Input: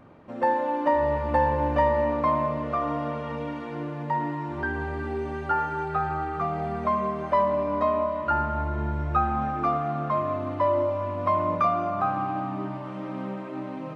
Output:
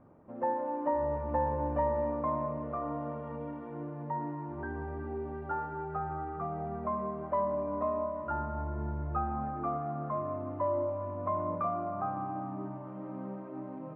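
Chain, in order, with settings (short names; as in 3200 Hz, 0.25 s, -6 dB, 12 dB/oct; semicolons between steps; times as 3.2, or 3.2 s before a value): LPF 1100 Hz 12 dB/oct; gain -7 dB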